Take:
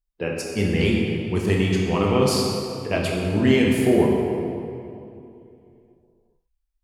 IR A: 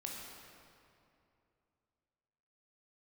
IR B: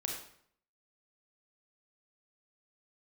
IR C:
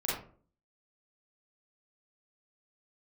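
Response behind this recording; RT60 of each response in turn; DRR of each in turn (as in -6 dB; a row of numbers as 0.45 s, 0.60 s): A; 2.7 s, 0.65 s, 0.45 s; -2.0 dB, 0.0 dB, -7.5 dB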